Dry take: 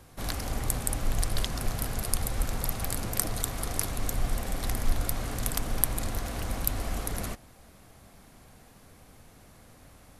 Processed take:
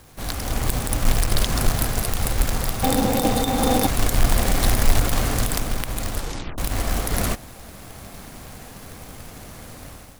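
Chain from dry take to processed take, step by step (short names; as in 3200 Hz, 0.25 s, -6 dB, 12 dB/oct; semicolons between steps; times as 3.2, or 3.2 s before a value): tracing distortion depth 0.065 ms; AGC gain up to 11 dB; 2.83–3.87 small resonant body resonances 260/500/780/3600 Hz, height 17 dB, ringing for 50 ms; companded quantiser 4-bit; 6.12 tape stop 0.46 s; maximiser +9 dB; gain -6 dB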